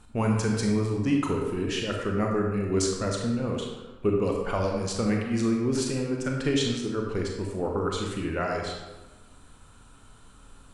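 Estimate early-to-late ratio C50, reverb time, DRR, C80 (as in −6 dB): 2.0 dB, 1.2 s, 0.0 dB, 4.5 dB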